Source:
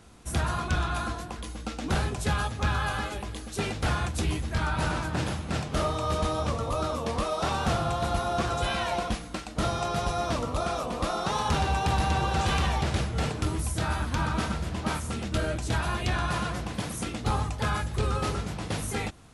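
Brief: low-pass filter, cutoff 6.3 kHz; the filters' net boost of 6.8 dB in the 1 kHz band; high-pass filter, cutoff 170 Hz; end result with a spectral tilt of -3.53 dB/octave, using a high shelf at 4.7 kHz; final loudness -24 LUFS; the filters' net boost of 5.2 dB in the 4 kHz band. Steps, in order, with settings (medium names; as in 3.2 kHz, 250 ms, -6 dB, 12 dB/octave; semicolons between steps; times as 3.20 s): high-pass 170 Hz; low-pass 6.3 kHz; peaking EQ 1 kHz +8.5 dB; peaking EQ 4 kHz +3.5 dB; treble shelf 4.7 kHz +6.5 dB; trim +2 dB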